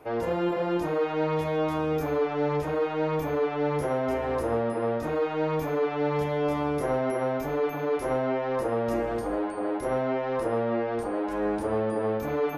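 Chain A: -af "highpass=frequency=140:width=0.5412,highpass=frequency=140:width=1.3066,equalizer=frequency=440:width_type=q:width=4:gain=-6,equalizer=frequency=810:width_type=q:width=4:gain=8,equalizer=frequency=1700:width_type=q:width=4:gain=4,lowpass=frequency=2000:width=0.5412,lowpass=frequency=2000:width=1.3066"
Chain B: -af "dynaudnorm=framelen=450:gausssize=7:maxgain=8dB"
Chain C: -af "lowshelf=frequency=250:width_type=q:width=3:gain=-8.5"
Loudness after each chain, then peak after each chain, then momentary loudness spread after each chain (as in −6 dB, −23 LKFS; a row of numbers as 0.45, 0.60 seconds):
−28.0, −20.5, −25.0 LKFS; −14.0, −7.5, −13.5 dBFS; 3, 7, 2 LU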